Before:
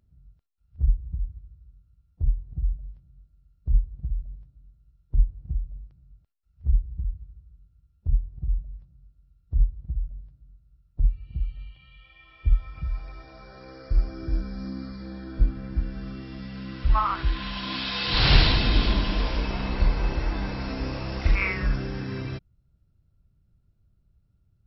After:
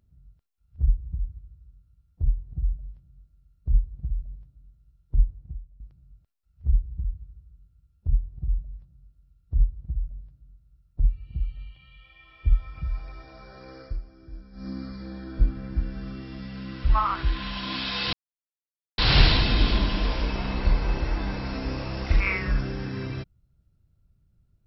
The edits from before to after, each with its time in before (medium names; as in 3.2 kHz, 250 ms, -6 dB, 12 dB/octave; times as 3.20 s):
5.30–5.80 s: fade out quadratic, to -16 dB
13.81–14.70 s: dip -15 dB, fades 0.18 s
18.13 s: insert silence 0.85 s